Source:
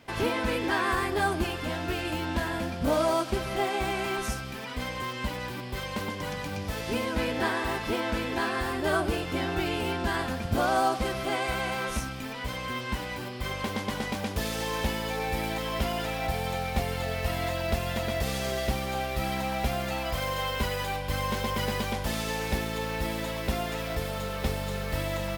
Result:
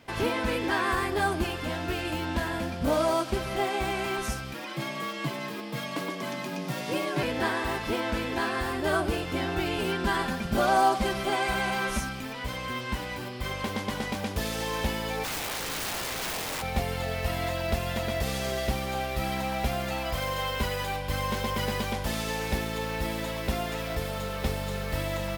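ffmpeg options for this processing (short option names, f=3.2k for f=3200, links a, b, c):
-filter_complex "[0:a]asettb=1/sr,asplit=3[a][b][c];[a]atrim=end=4.544[d];[b]atrim=start=4.54:end=7.23,asetpts=PTS-STARTPTS,afade=t=in:d=0.004:c=qsin,afade=t=out:st=2.686:d=0.004:c=qsin,afreqshift=84[e];[c]atrim=start=7.226[f];[d][e]acrossfade=d=0.004:c1=hsin:c2=qsin[g];[g][f]acrossfade=d=0.004:c1=qsin:c2=hsin,asettb=1/sr,asplit=3[h][i][j];[h]atrim=end=9.784[k];[i]atrim=start=9.78:end=12.2,asetpts=PTS-STARTPTS,afade=t=in:d=0.004:c=qsin,afade=t=out:st=2.416:d=0.004:c=qsin,aecho=1:1:5.1:0.67,atrim=end_sample=106722[l];[j]atrim=start=12.196[m];[k][l]acrossfade=d=0.004:c1=hsin:c2=qsin[n];[n][m]acrossfade=d=0.004:c1=qsin:c2=hsin,asplit=3[o][p][q];[o]afade=t=out:st=15.23:d=0.02[r];[p]aeval=exprs='(mod(23.7*val(0)+1,2)-1)/23.7':c=same,afade=t=in:st=15.23:d=0.02,afade=t=out:st=16.61:d=0.02[s];[q]afade=t=in:st=16.61:d=0.02[t];[r][s][t]amix=inputs=3:normalize=0"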